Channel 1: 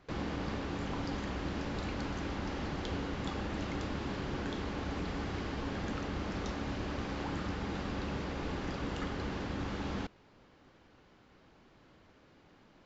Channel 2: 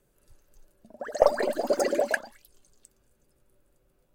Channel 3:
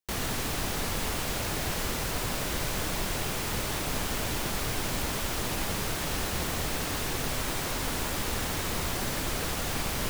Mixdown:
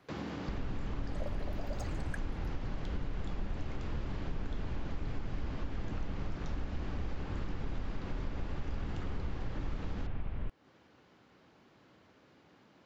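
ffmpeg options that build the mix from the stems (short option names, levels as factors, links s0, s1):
-filter_complex "[0:a]highpass=95,acrossover=split=280[s0][s1];[s1]acompressor=threshold=0.01:ratio=6[s2];[s0][s2]amix=inputs=2:normalize=0,volume=0.944[s3];[1:a]alimiter=limit=0.316:level=0:latency=1:release=364,asplit=2[s4][s5];[s5]afreqshift=0.84[s6];[s4][s6]amix=inputs=2:normalize=1,volume=0.299[s7];[2:a]lowpass=f=3100:w=0.5412,lowpass=f=3100:w=1.3066,aemphasis=mode=reproduction:type=riaa,adelay=400,volume=0.299[s8];[s3][s7][s8]amix=inputs=3:normalize=0,acompressor=threshold=0.0178:ratio=2.5"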